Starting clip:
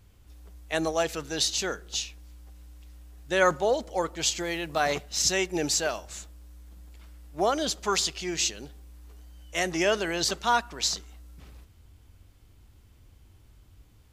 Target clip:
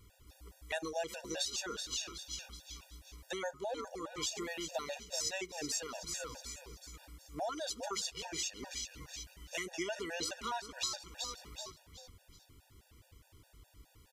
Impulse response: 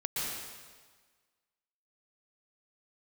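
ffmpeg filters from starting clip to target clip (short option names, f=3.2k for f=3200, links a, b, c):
-filter_complex "[0:a]asplit=2[a][b];[b]asplit=4[c][d][e][f];[c]adelay=374,afreqshift=-110,volume=-12dB[g];[d]adelay=748,afreqshift=-220,volume=-20.4dB[h];[e]adelay=1122,afreqshift=-330,volume=-28.8dB[i];[f]adelay=1496,afreqshift=-440,volume=-37.2dB[j];[g][h][i][j]amix=inputs=4:normalize=0[k];[a][k]amix=inputs=2:normalize=0,acompressor=threshold=-37dB:ratio=4,bass=f=250:g=-7,treble=f=4k:g=2,afftfilt=real='re*gt(sin(2*PI*4.8*pts/sr)*(1-2*mod(floor(b*sr/1024/480),2)),0)':imag='im*gt(sin(2*PI*4.8*pts/sr)*(1-2*mod(floor(b*sr/1024/480),2)),0)':win_size=1024:overlap=0.75,volume=2.5dB"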